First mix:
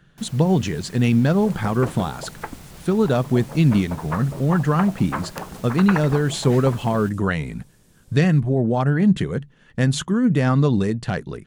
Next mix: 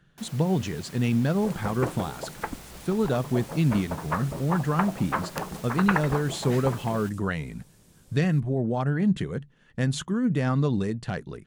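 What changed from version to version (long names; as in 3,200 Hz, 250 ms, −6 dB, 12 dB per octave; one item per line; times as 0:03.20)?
speech −6.5 dB
first sound: add high-pass filter 240 Hz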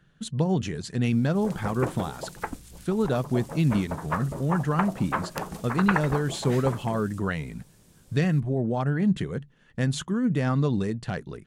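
first sound: muted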